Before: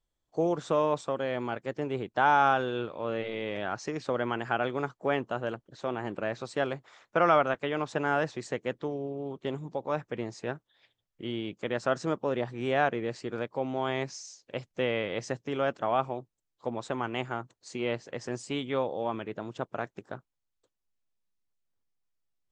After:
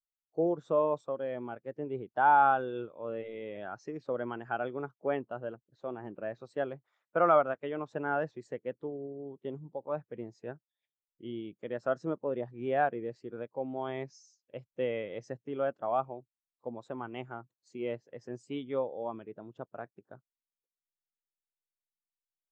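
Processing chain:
every bin expanded away from the loudest bin 1.5 to 1
level −2 dB

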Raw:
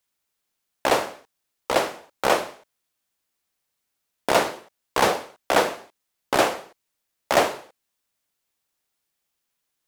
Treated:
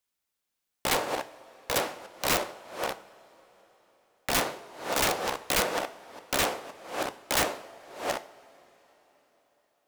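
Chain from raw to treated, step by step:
delay that plays each chunk backwards 516 ms, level −7 dB
coupled-rooms reverb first 0.43 s, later 4.3 s, from −18 dB, DRR 10.5 dB
wrap-around overflow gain 12.5 dB
level −5.5 dB

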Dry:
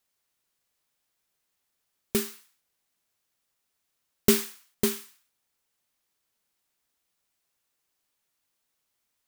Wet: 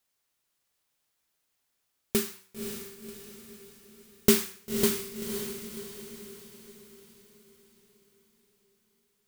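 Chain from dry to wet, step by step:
hum removal 95.55 Hz, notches 27
on a send: feedback delay with all-pass diffusion 539 ms, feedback 49%, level −7 dB

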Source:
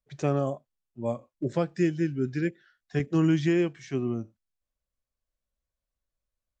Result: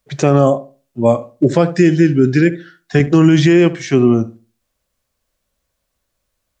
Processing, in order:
low-shelf EQ 64 Hz −11.5 dB
feedback echo with a low-pass in the loop 70 ms, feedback 29%, low-pass 1,000 Hz, level −14.5 dB
boost into a limiter +20 dB
level −1 dB

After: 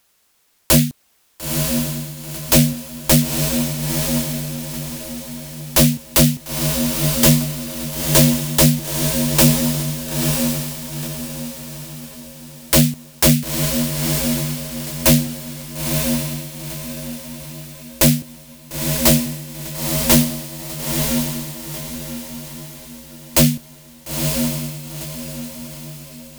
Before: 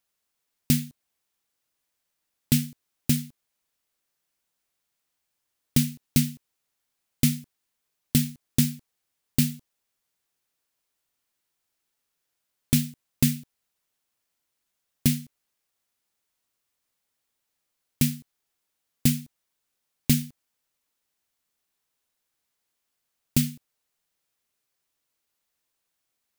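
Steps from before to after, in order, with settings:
sine wavefolder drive 16 dB, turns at −6 dBFS
feedback delay with all-pass diffusion 945 ms, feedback 42%, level −3 dB
level −1 dB

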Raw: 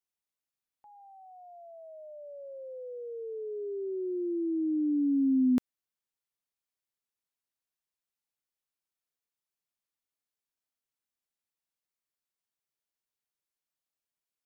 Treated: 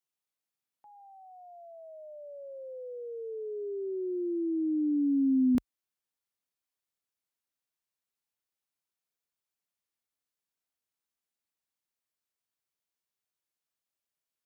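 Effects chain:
high-pass filter 86 Hz 24 dB per octave, from 0:05.55 42 Hz

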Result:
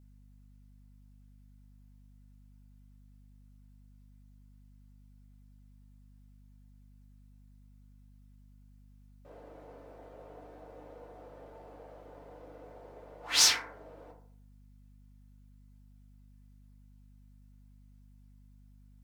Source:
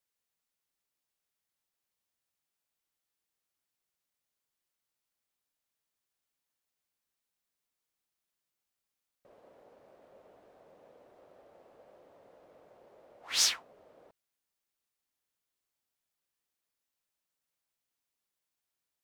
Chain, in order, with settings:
feedback delay network reverb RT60 0.56 s, low-frequency decay 0.8×, high-frequency decay 0.35×, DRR −4 dB
mains hum 50 Hz, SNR 15 dB
level +1.5 dB

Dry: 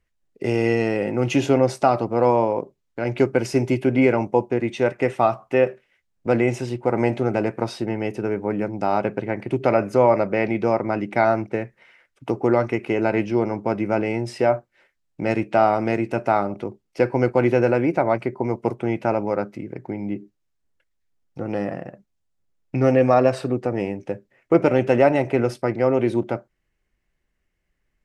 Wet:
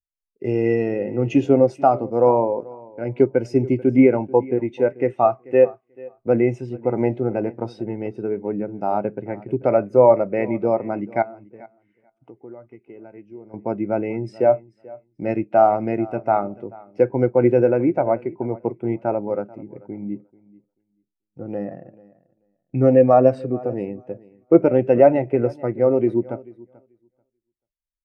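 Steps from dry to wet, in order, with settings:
0:11.22–0:13.54: downward compressor 2 to 1, threshold −43 dBFS, peak gain reduction 16 dB
repeating echo 437 ms, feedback 25%, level −15 dB
every bin expanded away from the loudest bin 1.5 to 1
level +3 dB

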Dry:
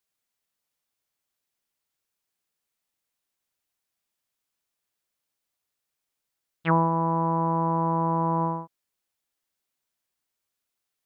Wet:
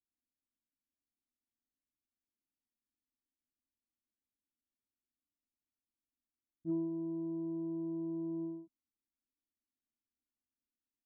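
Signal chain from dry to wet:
transistor ladder low-pass 290 Hz, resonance 50%
comb filter 3.1 ms, depth 85%
level +1 dB

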